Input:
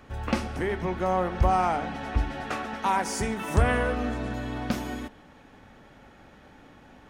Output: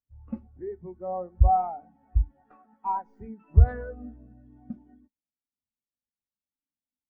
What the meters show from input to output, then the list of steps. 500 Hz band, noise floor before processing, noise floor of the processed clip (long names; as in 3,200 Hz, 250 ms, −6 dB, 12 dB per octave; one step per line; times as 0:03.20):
−8.0 dB, −53 dBFS, below −85 dBFS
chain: stylus tracing distortion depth 0.15 ms
every bin expanded away from the loudest bin 2.5 to 1
level +3.5 dB